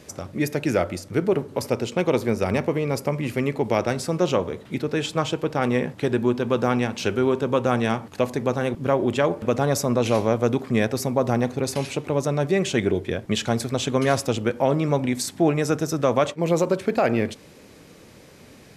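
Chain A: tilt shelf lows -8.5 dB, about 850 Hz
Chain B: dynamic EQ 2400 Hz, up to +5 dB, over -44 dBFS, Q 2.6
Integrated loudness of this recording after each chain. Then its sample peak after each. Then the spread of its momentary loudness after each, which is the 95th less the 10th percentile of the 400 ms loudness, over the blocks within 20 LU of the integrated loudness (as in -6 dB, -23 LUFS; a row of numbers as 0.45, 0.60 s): -24.5, -23.0 LUFS; -4.0, -5.5 dBFS; 6, 4 LU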